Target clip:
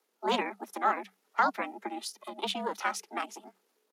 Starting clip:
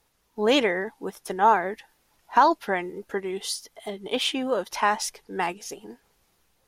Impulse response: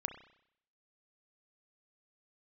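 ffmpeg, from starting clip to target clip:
-af "aeval=exprs='val(0)*sin(2*PI*240*n/s)':c=same,atempo=1.7,afreqshift=190,volume=-4dB"

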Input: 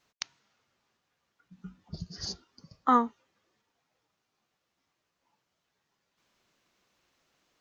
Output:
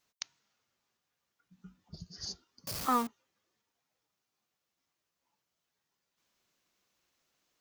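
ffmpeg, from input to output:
-filter_complex "[0:a]asettb=1/sr,asplit=3[a][b][c];[a]atrim=end=2.674[d];[b]atrim=start=2.67:end=3.07,asetpts=PTS-STARTPTS,afade=t=in:d=0.004:c=qsin,afade=t=out:st=0.396:d=0.004:c=qsin,aeval=exprs='val(0)+0.5*0.0376*sgn(val(0))':c=same[e];[c]atrim=start=3.066[f];[d][e]acrossfade=d=0.004:c1=hsin:c2=qsin[g];[g][f]acrossfade=d=0.004:c1=qsin:c2=hsin,crystalizer=i=1.5:c=0,volume=-8dB"

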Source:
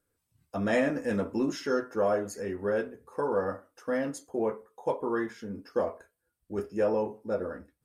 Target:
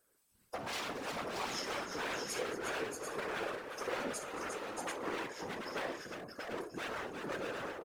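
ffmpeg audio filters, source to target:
-filter_complex "[0:a]aeval=exprs='0.0355*(abs(mod(val(0)/0.0355+3,4)-2)-1)':c=same,acompressor=threshold=-43dB:ratio=6,bass=f=250:g=-13,treble=f=4k:g=3,asplit=2[a][b];[b]aecho=0:1:54|223|354|630|738:0.299|0.168|0.447|0.596|0.501[c];[a][c]amix=inputs=2:normalize=0,afftfilt=real='hypot(re,im)*cos(2*PI*random(0))':imag='hypot(re,im)*sin(2*PI*random(1))':win_size=512:overlap=0.75,volume=10.5dB"

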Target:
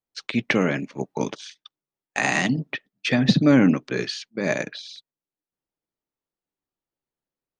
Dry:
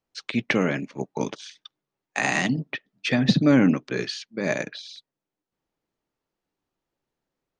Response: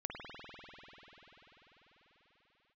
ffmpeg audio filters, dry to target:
-af "agate=range=-11dB:threshold=-44dB:ratio=16:detection=peak,volume=1.5dB"

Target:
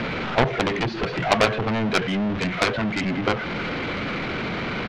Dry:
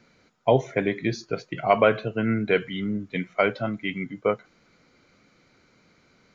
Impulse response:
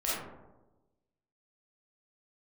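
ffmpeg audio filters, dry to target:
-filter_complex "[0:a]aeval=exprs='val(0)+0.5*0.0447*sgn(val(0))':c=same,lowpass=f=3.3k:w=0.5412,lowpass=f=3.3k:w=1.3066,asplit=2[a][b];[b]acompressor=threshold=-32dB:ratio=6,volume=-2.5dB[c];[a][c]amix=inputs=2:normalize=0,atempo=1.3,aeval=exprs='0.708*(cos(1*acos(clip(val(0)/0.708,-1,1)))-cos(1*PI/2))+0.2*(cos(7*acos(clip(val(0)/0.708,-1,1)))-cos(7*PI/2))':c=same,acontrast=88,volume=-4.5dB"

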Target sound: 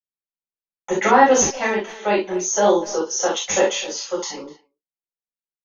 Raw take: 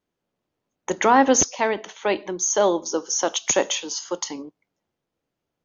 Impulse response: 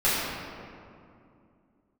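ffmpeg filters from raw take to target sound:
-filter_complex "[0:a]asplit=2[a][b];[b]adelay=250,highpass=300,lowpass=3.4k,asoftclip=type=hard:threshold=-15dB,volume=-16dB[c];[a][c]amix=inputs=2:normalize=0,agate=range=-33dB:threshold=-39dB:ratio=3:detection=peak[d];[1:a]atrim=start_sample=2205,atrim=end_sample=3528[e];[d][e]afir=irnorm=-1:irlink=0,volume=-9.5dB"

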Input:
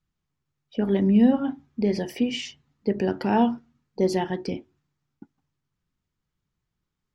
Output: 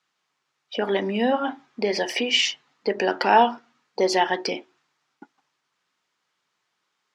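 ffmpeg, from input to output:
-filter_complex "[0:a]asplit=2[a][b];[b]acompressor=threshold=-29dB:ratio=6,volume=1.5dB[c];[a][c]amix=inputs=2:normalize=0,highpass=670,lowpass=6.5k,volume=8dB"

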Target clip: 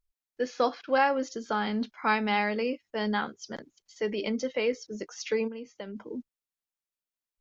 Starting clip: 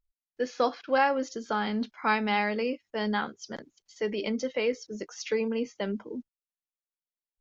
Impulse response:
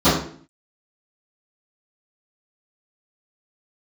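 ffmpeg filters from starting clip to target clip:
-filter_complex "[0:a]asplit=3[a][b][c];[a]afade=t=out:st=5.47:d=0.02[d];[b]acompressor=threshold=-36dB:ratio=12,afade=t=in:st=5.47:d=0.02,afade=t=out:st=5.95:d=0.02[e];[c]afade=t=in:st=5.95:d=0.02[f];[d][e][f]amix=inputs=3:normalize=0"

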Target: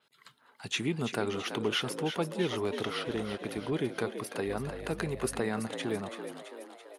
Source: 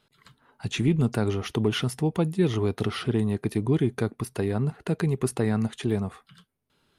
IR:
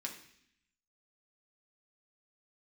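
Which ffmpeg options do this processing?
-filter_complex "[0:a]highpass=f=640:p=1,asettb=1/sr,asplit=3[a][b][c];[a]atrim=end=2.874[d];[b]atrim=start=2.87:end=3.73,asetpts=PTS-STARTPTS,afade=t=in:d=0.004:c=qsin,afade=t=out:st=0.856:d=0.004:c=qsin,tremolo=f=270:d=0.4[e];[c]atrim=start=3.726[f];[d][e]acrossfade=d=0.004:c1=hsin:c2=qsin[g];[g][f]acrossfade=d=0.004:c1=qsin:c2=hsin,asettb=1/sr,asplit=3[h][i][j];[h]atrim=end=4.474[k];[i]atrim=start=4.47:end=5.4,asetpts=PTS-STARTPTS,afade=t=in:d=0.004:c=qsin,afade=t=out:st=0.926:d=0.004:c=qsin,aeval=exprs='val(0)+0.00501*(sin(2*PI*50*n/s)+sin(2*PI*2*50*n/s)/2+sin(2*PI*3*50*n/s)/3+sin(2*PI*4*50*n/s)/4+sin(2*PI*5*50*n/s)/5)':c=same[l];[j]atrim=start=5.396[m];[k][l]acrossfade=d=0.004:c1=hsin:c2=qsin[n];[n][m]acrossfade=d=0.004:c1=qsin:c2=hsin,asplit=8[o][p][q][r][s][t][u][v];[p]adelay=333,afreqshift=62,volume=-9dB[w];[q]adelay=666,afreqshift=124,volume=-13.9dB[x];[r]adelay=999,afreqshift=186,volume=-18.8dB[y];[s]adelay=1332,afreqshift=248,volume=-23.6dB[z];[t]adelay=1665,afreqshift=310,volume=-28.5dB[aa];[u]adelay=1998,afreqshift=372,volume=-33.4dB[ab];[v]adelay=2331,afreqshift=434,volume=-38.3dB[ac];[o][w][x][y][z][aa][ab][ac]amix=inputs=8:normalize=0,adynamicequalizer=threshold=0.00282:dfrequency=5100:dqfactor=0.7:tfrequency=5100:tqfactor=0.7:attack=5:release=100:ratio=0.375:range=2:mode=cutabove:tftype=highshelf"

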